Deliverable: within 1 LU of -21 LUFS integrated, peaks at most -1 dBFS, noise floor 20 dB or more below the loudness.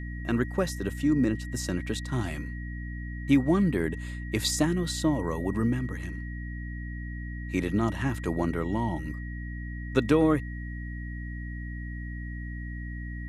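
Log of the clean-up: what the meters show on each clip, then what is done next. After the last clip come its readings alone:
hum 60 Hz; harmonics up to 300 Hz; hum level -34 dBFS; steady tone 1900 Hz; tone level -44 dBFS; loudness -30.0 LUFS; peak -9.0 dBFS; loudness target -21.0 LUFS
-> de-hum 60 Hz, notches 5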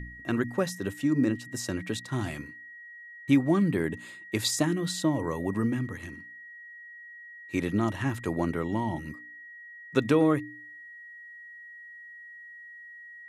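hum none; steady tone 1900 Hz; tone level -44 dBFS
-> notch 1900 Hz, Q 30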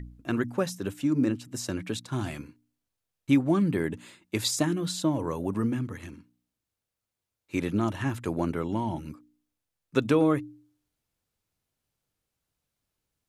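steady tone none; loudness -28.5 LUFS; peak -10.0 dBFS; loudness target -21.0 LUFS
-> gain +7.5 dB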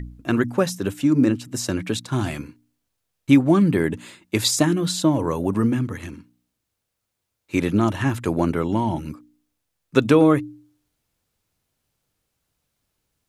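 loudness -21.0 LUFS; peak -2.5 dBFS; noise floor -79 dBFS

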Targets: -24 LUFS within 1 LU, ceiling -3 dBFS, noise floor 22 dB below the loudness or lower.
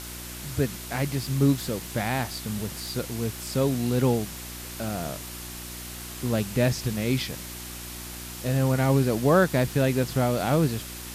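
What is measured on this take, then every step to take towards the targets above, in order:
hum 60 Hz; harmonics up to 360 Hz; hum level -41 dBFS; noise floor -38 dBFS; noise floor target -49 dBFS; loudness -27.0 LUFS; peak -8.0 dBFS; loudness target -24.0 LUFS
-> de-hum 60 Hz, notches 6; denoiser 11 dB, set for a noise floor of -38 dBFS; gain +3 dB

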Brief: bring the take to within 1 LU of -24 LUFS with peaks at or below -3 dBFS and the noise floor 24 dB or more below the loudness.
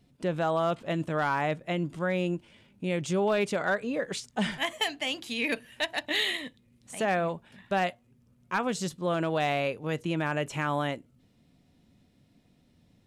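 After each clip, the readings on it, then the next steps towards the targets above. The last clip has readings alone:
clipped 0.2%; flat tops at -19.0 dBFS; loudness -30.0 LUFS; peak -19.0 dBFS; loudness target -24.0 LUFS
-> clip repair -19 dBFS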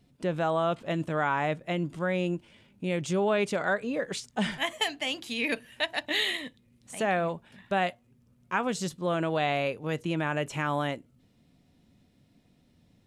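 clipped 0.0%; loudness -29.5 LUFS; peak -12.0 dBFS; loudness target -24.0 LUFS
-> gain +5.5 dB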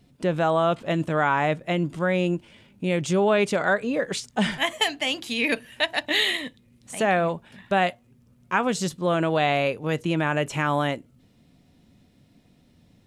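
loudness -24.0 LUFS; peak -6.5 dBFS; noise floor -59 dBFS

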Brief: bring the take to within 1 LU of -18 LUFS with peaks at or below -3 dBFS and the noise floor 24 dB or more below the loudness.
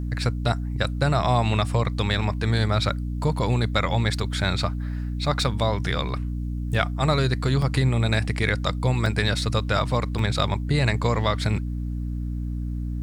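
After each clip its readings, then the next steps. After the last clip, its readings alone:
dropouts 4; longest dropout 2.4 ms; hum 60 Hz; harmonics up to 300 Hz; hum level -26 dBFS; loudness -24.5 LUFS; peak -7.5 dBFS; loudness target -18.0 LUFS
-> interpolate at 7.62/8.14/9.06/10.19, 2.4 ms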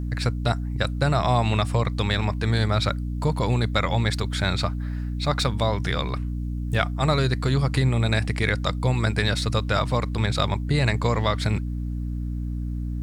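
dropouts 0; hum 60 Hz; harmonics up to 300 Hz; hum level -26 dBFS
-> notches 60/120/180/240/300 Hz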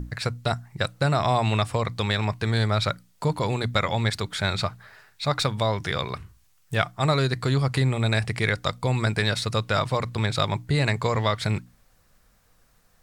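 hum none; loudness -25.0 LUFS; peak -7.0 dBFS; loudness target -18.0 LUFS
-> gain +7 dB; limiter -3 dBFS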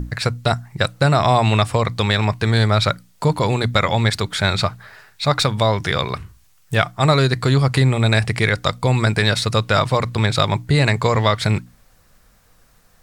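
loudness -18.5 LUFS; peak -3.0 dBFS; noise floor -54 dBFS

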